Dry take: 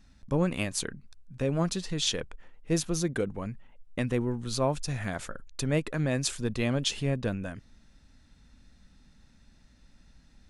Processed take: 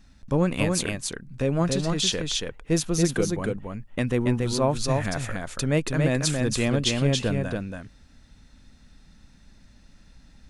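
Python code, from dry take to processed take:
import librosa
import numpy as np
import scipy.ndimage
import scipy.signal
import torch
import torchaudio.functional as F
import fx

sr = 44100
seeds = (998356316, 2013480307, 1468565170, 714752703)

y = x + 10.0 ** (-3.5 / 20.0) * np.pad(x, (int(281 * sr / 1000.0), 0))[:len(x)]
y = y * librosa.db_to_amplitude(4.0)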